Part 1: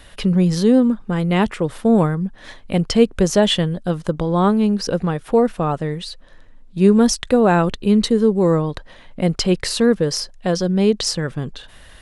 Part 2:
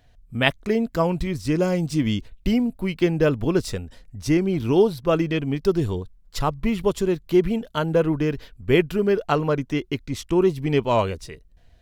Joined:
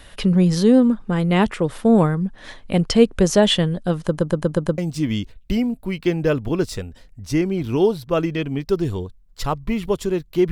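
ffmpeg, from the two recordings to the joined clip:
-filter_complex "[0:a]apad=whole_dur=10.51,atrim=end=10.51,asplit=6[a][b][c][d][e][f];[a]atrim=end=4.182[g];[b]atrim=start=4.058:end=4.182[h];[c]atrim=start=4.058:end=4.182[i];[d]atrim=start=4.058:end=4.182[j];[e]atrim=start=4.058:end=4.182[k];[f]atrim=start=4.058:end=4.182[l];[1:a]atrim=start=1.738:end=7.47[m];[g][h]acrossfade=d=0.004:c1=hsin:c2=hsin[n];[n][i]acrossfade=d=0.004:c1=hsin:c2=hsin[o];[o][j]acrossfade=d=0.004:c1=hsin:c2=hsin[p];[p][k]acrossfade=d=0.004:c1=hsin:c2=hsin[q];[q][l]acrossfade=d=0.004:c1=hsin:c2=hsin[r];[r][m]acrossfade=d=0.004:c1=hsin:c2=hsin"

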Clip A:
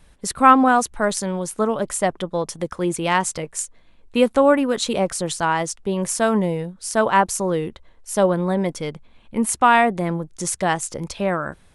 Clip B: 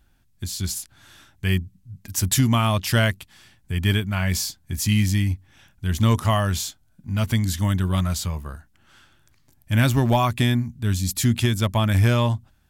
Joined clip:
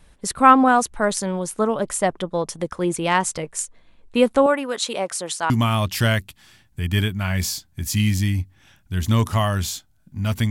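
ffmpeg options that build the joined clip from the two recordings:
-filter_complex "[0:a]asettb=1/sr,asplit=3[a][b][c];[a]atrim=end=4.464[d];[b]atrim=start=4.46:end=5.5,asetpts=PTS-STARTPTS,afade=t=in:d=0.004:c=qsin,afade=t=out:st=1.036:d=0.004:c=qsin,highpass=f=690:p=1[e];[c]atrim=start=5.496[f];[d][e]acrossfade=d=0.004:c1=hsin:c2=qsin[g];[g][f]acrossfade=d=0.004:c1=qsin:c2=hsin,apad=whole_dur=10.5,atrim=end=10.5,atrim=end=5.502[h];[1:a]atrim=start=2.418:end=7.42[i];[h][i]acrossfade=d=0.004:c1=hsin:c2=hsin"

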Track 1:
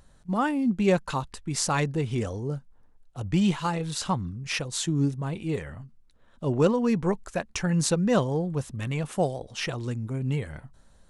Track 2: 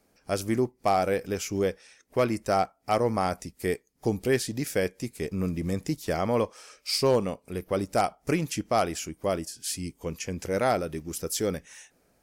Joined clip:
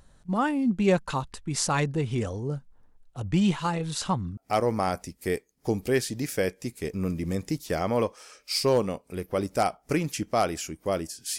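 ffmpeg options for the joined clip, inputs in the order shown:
-filter_complex "[0:a]apad=whole_dur=11.38,atrim=end=11.38,atrim=end=4.372[a];[1:a]atrim=start=2.748:end=9.76[b];[a][b]acrossfade=d=0.004:c1=hsin:c2=hsin"

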